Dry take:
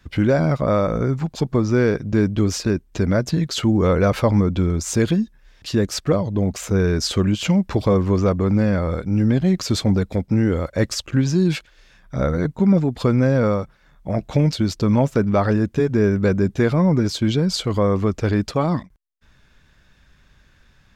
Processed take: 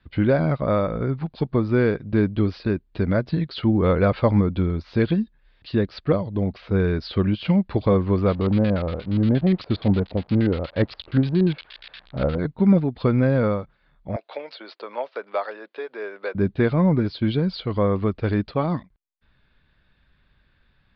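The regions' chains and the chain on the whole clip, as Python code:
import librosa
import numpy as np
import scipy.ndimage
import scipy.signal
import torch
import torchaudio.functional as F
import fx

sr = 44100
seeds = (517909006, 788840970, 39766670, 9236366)

y = fx.chain(x, sr, fx.crossing_spikes(level_db=-15.5),
    fx.filter_lfo_lowpass(shape='square', hz=8.5, low_hz=760.0, high_hz=3700.0, q=1.3), at=(8.29, 12.39))
y = fx.chain(y, sr, fx.highpass(hz=500.0, slope=24),
    fx.band_squash(depth_pct=40), at=(14.16, 16.35))
y = scipy.signal.sosfilt(scipy.signal.butter(12, 4600.0, 'lowpass', fs=sr, output='sos'), y)
y = fx.upward_expand(y, sr, threshold_db=-27.0, expansion=1.5)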